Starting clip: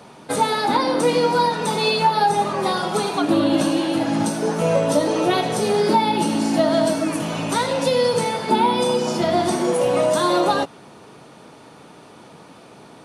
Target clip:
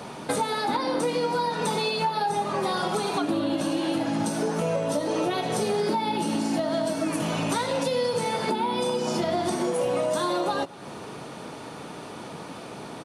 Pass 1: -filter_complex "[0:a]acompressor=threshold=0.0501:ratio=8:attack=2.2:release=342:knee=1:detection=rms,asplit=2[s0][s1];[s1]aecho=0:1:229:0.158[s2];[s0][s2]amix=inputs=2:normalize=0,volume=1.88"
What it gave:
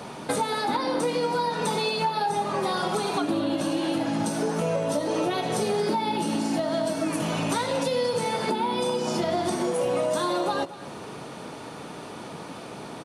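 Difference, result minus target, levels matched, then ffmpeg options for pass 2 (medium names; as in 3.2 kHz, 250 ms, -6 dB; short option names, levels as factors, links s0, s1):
echo-to-direct +6.5 dB
-filter_complex "[0:a]acompressor=threshold=0.0501:ratio=8:attack=2.2:release=342:knee=1:detection=rms,asplit=2[s0][s1];[s1]aecho=0:1:229:0.075[s2];[s0][s2]amix=inputs=2:normalize=0,volume=1.88"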